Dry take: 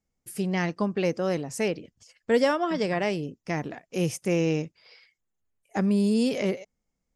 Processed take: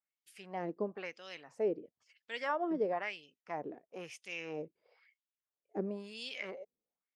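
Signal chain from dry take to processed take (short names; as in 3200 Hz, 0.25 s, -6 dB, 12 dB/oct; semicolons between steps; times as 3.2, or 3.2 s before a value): wah 1 Hz 370–3400 Hz, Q 2.4; gain -2.5 dB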